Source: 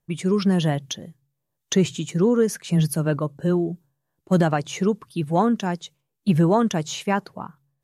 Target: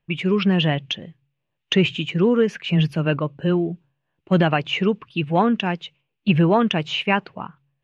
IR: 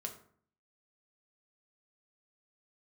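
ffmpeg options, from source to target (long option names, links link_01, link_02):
-af "lowpass=frequency=2700:width_type=q:width=4.6,volume=1dB"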